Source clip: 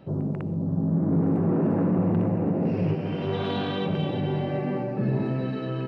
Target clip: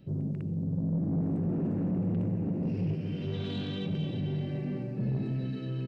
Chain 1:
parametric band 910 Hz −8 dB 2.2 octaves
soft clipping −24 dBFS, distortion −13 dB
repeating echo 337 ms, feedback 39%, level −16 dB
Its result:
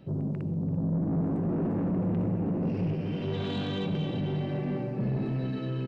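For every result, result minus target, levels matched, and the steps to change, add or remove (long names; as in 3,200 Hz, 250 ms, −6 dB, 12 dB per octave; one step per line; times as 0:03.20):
echo-to-direct +12 dB; 1,000 Hz band +6.5 dB
change: repeating echo 337 ms, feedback 39%, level −28 dB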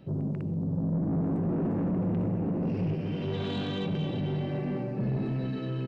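1,000 Hz band +7.0 dB
change: parametric band 910 Hz −19.5 dB 2.2 octaves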